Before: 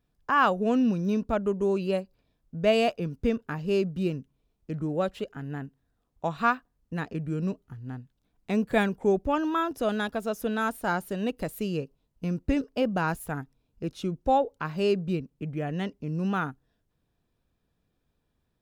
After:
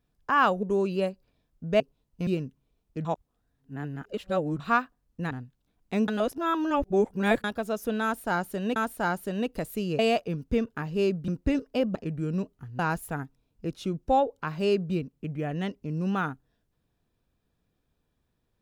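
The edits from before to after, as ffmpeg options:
-filter_complex "[0:a]asplit=14[s0][s1][s2][s3][s4][s5][s6][s7][s8][s9][s10][s11][s12][s13];[s0]atrim=end=0.632[s14];[s1]atrim=start=1.538:end=2.712[s15];[s2]atrim=start=11.828:end=12.302[s16];[s3]atrim=start=3.998:end=4.782[s17];[s4]atrim=start=4.778:end=6.332,asetpts=PTS-STARTPTS,areverse[s18];[s5]atrim=start=6.328:end=7.042[s19];[s6]atrim=start=7.878:end=8.652[s20];[s7]atrim=start=8.648:end=10.012,asetpts=PTS-STARTPTS,areverse[s21];[s8]atrim=start=10.008:end=11.332[s22];[s9]atrim=start=10.598:end=11.832[s23];[s10]atrim=start=2.708:end=4.002[s24];[s11]atrim=start=12.298:end=12.972[s25];[s12]atrim=start=7.038:end=7.882[s26];[s13]atrim=start=12.968[s27];[s14][s15]acrossfade=d=0.004:c1=hsin:c2=hsin[s28];[s28][s16]acrossfade=d=0.004:c1=hsin:c2=hsin[s29];[s29][s17]acrossfade=d=0.004:c1=hsin:c2=hsin[s30];[s30][s18]acrossfade=d=0.004:c1=hsin:c2=hsin[s31];[s31][s19]acrossfade=d=0.004:c1=hsin:c2=hsin[s32];[s32][s20]acrossfade=d=0.004:c1=hsin:c2=hsin[s33];[s33][s21]acrossfade=d=0.004:c1=hsin:c2=hsin[s34];[s34][s22]acrossfade=d=0.004:c1=hsin:c2=hsin[s35];[s35][s23]acrossfade=d=0.004:c1=hsin:c2=hsin[s36];[s36][s24]acrossfade=d=0.004:c1=hsin:c2=hsin[s37];[s37][s25]acrossfade=d=0.004:c1=hsin:c2=hsin[s38];[s38][s26]acrossfade=d=0.004:c1=hsin:c2=hsin[s39];[s39][s27]acrossfade=d=0.004:c1=hsin:c2=hsin"

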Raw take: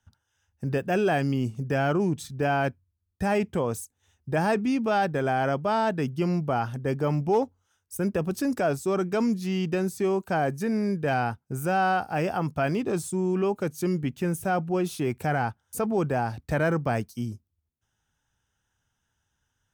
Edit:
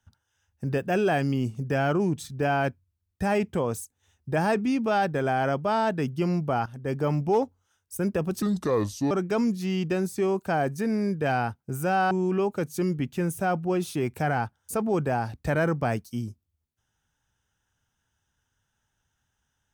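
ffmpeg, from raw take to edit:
-filter_complex "[0:a]asplit=5[s0][s1][s2][s3][s4];[s0]atrim=end=6.66,asetpts=PTS-STARTPTS,afade=t=out:st=6.656:d=0.004:c=hsin:silence=0.223872[s5];[s1]atrim=start=6.66:end=8.424,asetpts=PTS-STARTPTS,afade=t=in:d=0.32:silence=0.223872[s6];[s2]atrim=start=8.42:end=8.93,asetpts=PTS-STARTPTS,asetrate=32634,aresample=44100,atrim=end_sample=30393,asetpts=PTS-STARTPTS[s7];[s3]atrim=start=8.926:end=11.932[s8];[s4]atrim=start=13.148[s9];[s5][s6]concat=n=2:v=0:a=1[s10];[s10][s7]acrossfade=d=0.004:c1=hsin:c2=hsin[s11];[s11][s8]acrossfade=d=0.004:c1=hsin:c2=hsin[s12];[s12][s9]acrossfade=d=0.004:c1=hsin:c2=hsin"

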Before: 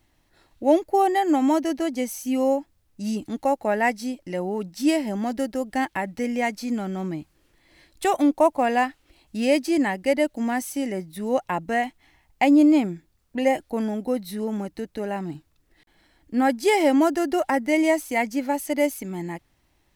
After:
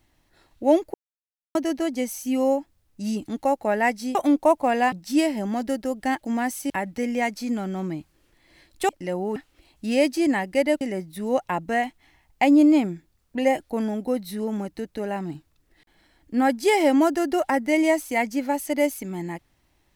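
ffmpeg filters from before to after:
-filter_complex "[0:a]asplit=10[s0][s1][s2][s3][s4][s5][s6][s7][s8][s9];[s0]atrim=end=0.94,asetpts=PTS-STARTPTS,afade=t=out:st=0.936:d=0.004:c=hsin[s10];[s1]atrim=start=0.94:end=1.55,asetpts=PTS-STARTPTS,volume=0[s11];[s2]atrim=start=1.55:end=4.152,asetpts=PTS-STARTPTS,afade=t=in:d=0.004:c=hsin[s12];[s3]atrim=start=8.098:end=8.872[s13];[s4]atrim=start=4.618:end=5.912[s14];[s5]atrim=start=10.318:end=10.812[s15];[s6]atrim=start=5.908:end=8.102[s16];[s7]atrim=start=4.148:end=4.622[s17];[s8]atrim=start=8.868:end=10.322[s18];[s9]atrim=start=10.808[s19];[s10][s11][s12]concat=n=3:v=0:a=1[s20];[s20][s13]acrossfade=d=0.004:c1=hsin:c2=hsin[s21];[s21][s14]acrossfade=d=0.004:c1=hsin:c2=hsin[s22];[s22][s15]acrossfade=d=0.004:c1=hsin:c2=hsin[s23];[s23][s16]acrossfade=d=0.004:c1=hsin:c2=hsin[s24];[s24][s17]acrossfade=d=0.004:c1=hsin:c2=hsin[s25];[s25][s18]acrossfade=d=0.004:c1=hsin:c2=hsin[s26];[s26][s19]acrossfade=d=0.004:c1=hsin:c2=hsin"

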